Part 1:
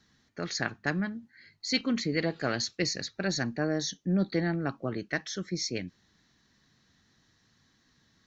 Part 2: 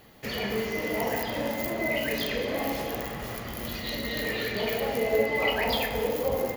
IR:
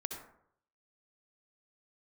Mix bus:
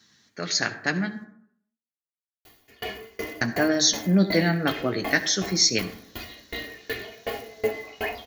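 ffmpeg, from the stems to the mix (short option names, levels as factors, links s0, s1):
-filter_complex "[0:a]highpass=120,volume=1.41,asplit=3[s0][s1][s2];[s0]atrim=end=1.24,asetpts=PTS-STARTPTS,afade=t=out:st=1.236:d=0.004:c=hsin[s3];[s1]atrim=start=1.24:end=3.41,asetpts=PTS-STARTPTS,volume=0[s4];[s2]atrim=start=3.41,asetpts=PTS-STARTPTS,afade=t=in:d=0.004:c=hsin[s5];[s3][s4][s5]concat=n=3:v=0:a=1,asplit=2[s6][s7];[s7]volume=0.562[s8];[1:a]acrossover=split=2700[s9][s10];[s10]acompressor=threshold=0.00708:ratio=4:attack=1:release=60[s11];[s9][s11]amix=inputs=2:normalize=0,aecho=1:1:2.8:0.67,aeval=exprs='val(0)*pow(10,-30*if(lt(mod(2.7*n/s,1),2*abs(2.7)/1000),1-mod(2.7*n/s,1)/(2*abs(2.7)/1000),(mod(2.7*n/s,1)-2*abs(2.7)/1000)/(1-2*abs(2.7)/1000))/20)':c=same,adelay=2450,volume=1[s12];[2:a]atrim=start_sample=2205[s13];[s8][s13]afir=irnorm=-1:irlink=0[s14];[s6][s12][s14]amix=inputs=3:normalize=0,highshelf=f=2400:g=9.5,dynaudnorm=f=530:g=7:m=2.11,flanger=delay=9.3:depth=1.7:regen=-39:speed=0.51:shape=triangular"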